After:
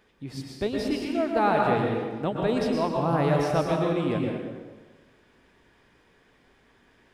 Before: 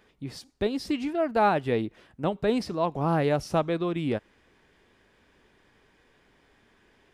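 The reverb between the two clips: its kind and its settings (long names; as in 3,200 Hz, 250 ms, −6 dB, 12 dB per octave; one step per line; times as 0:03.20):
dense smooth reverb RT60 1.4 s, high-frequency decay 0.7×, pre-delay 100 ms, DRR −0.5 dB
level −1.5 dB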